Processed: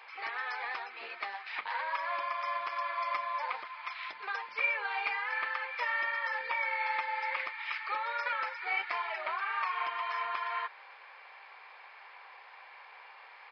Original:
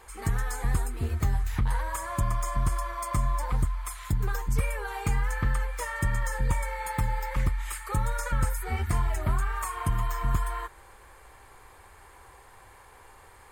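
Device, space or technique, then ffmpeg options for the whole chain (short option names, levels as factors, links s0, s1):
musical greeting card: -af "aresample=11025,aresample=44100,highpass=f=600:w=0.5412,highpass=f=600:w=1.3066,equalizer=f=2400:t=o:w=0.54:g=10"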